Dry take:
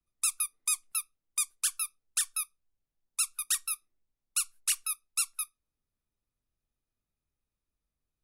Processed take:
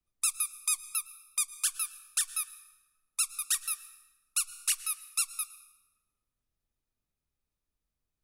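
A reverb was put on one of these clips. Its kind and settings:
dense smooth reverb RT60 1.2 s, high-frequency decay 0.75×, pre-delay 95 ms, DRR 15 dB

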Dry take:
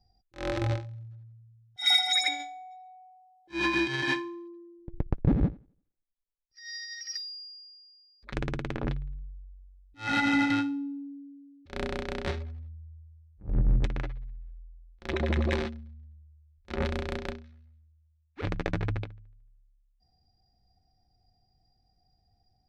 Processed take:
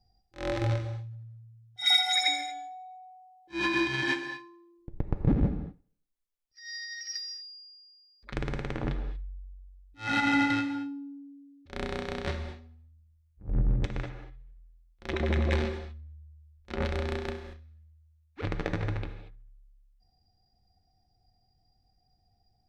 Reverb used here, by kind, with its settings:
reverb whose tail is shaped and stops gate 260 ms flat, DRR 7 dB
level −1 dB

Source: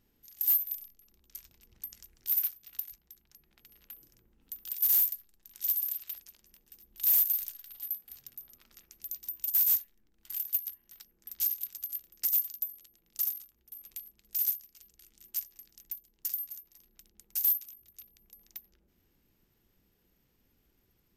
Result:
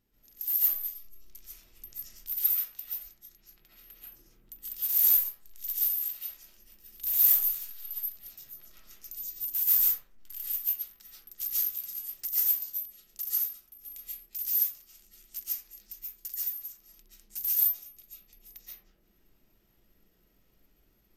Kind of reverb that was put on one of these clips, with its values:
comb and all-pass reverb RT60 0.62 s, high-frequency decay 0.45×, pre-delay 100 ms, DRR −9 dB
level −5.5 dB

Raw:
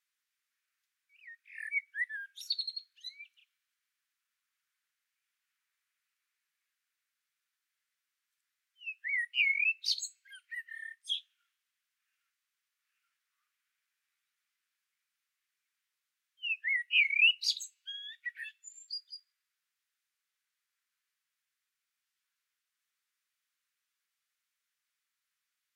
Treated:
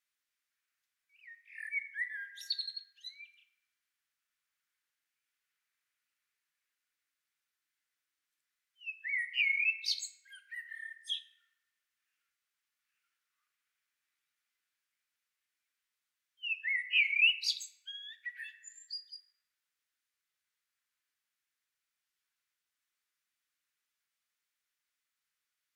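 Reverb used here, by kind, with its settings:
feedback delay network reverb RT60 1.7 s, high-frequency decay 0.3×, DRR 7.5 dB
level −2 dB

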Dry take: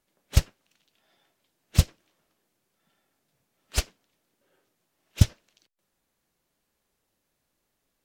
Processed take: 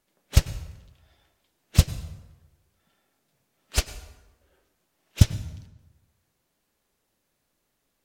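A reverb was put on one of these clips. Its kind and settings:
dense smooth reverb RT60 1.1 s, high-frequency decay 0.65×, pre-delay 85 ms, DRR 13.5 dB
level +2 dB

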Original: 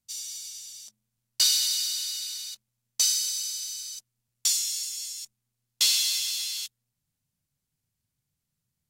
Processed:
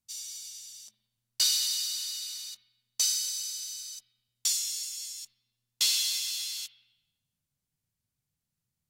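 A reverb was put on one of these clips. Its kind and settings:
spring reverb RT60 1 s, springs 54/59 ms, chirp 35 ms, DRR 14.5 dB
level −3.5 dB

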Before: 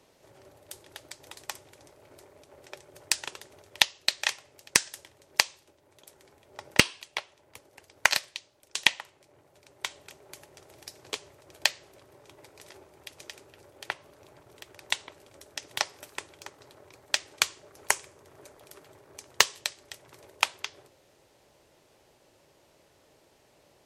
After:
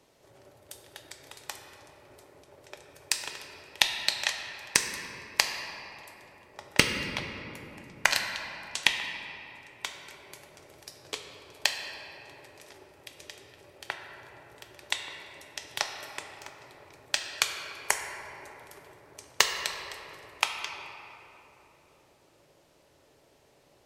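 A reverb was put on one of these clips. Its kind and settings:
rectangular room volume 190 cubic metres, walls hard, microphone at 0.31 metres
level −2 dB

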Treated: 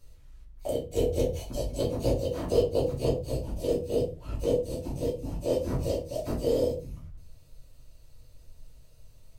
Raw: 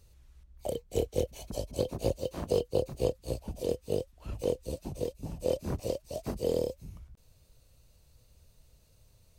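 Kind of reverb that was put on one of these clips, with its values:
rectangular room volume 160 cubic metres, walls furnished, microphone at 2.8 metres
level −3 dB

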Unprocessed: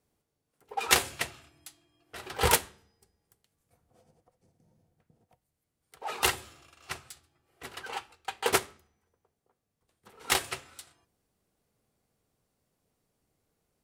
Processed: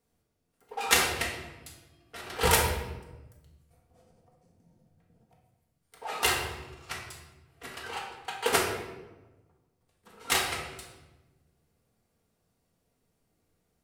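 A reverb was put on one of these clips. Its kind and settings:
rectangular room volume 570 cubic metres, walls mixed, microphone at 1.7 metres
level −2 dB

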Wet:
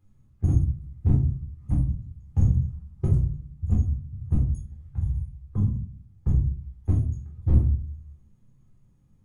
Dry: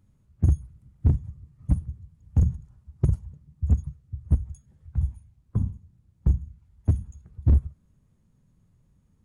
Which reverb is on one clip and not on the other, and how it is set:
rectangular room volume 340 cubic metres, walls furnished, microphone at 3.9 metres
level −7 dB

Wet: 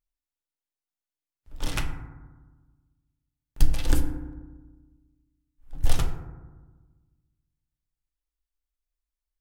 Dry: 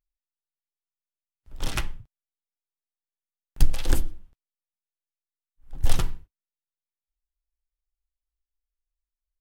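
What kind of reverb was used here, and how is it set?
feedback delay network reverb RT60 1.3 s, low-frequency decay 1.4×, high-frequency decay 0.3×, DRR 5 dB
level −1.5 dB

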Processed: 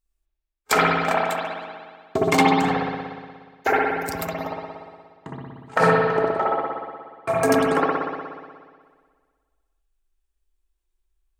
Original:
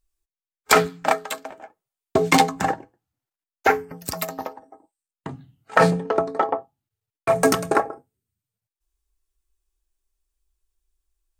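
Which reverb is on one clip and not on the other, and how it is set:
spring reverb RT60 1.7 s, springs 59 ms, chirp 45 ms, DRR −5 dB
level −5 dB

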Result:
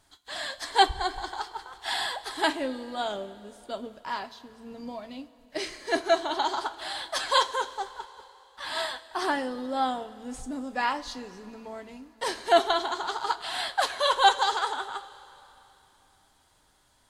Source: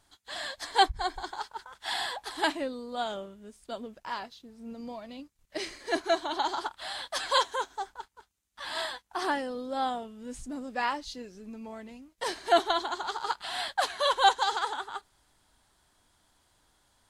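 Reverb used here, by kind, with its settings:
coupled-rooms reverb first 0.22 s, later 3.2 s, from −18 dB, DRR 8.5 dB
level +2 dB

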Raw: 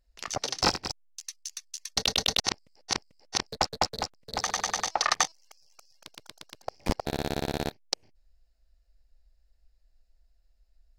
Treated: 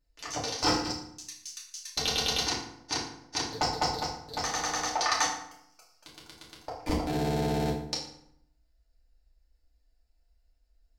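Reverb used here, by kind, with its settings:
feedback delay network reverb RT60 0.72 s, low-frequency decay 1.3×, high-frequency decay 0.7×, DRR −6 dB
level −7.5 dB

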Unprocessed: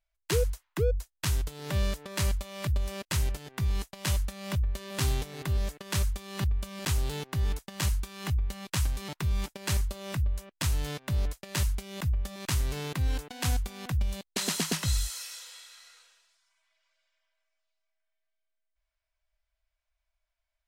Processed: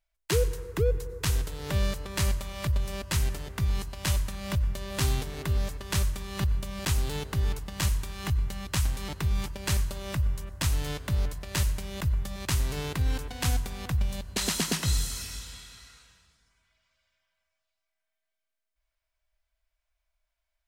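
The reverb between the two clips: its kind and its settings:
dense smooth reverb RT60 2.4 s, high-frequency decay 0.35×, pre-delay 80 ms, DRR 13 dB
level +1.5 dB

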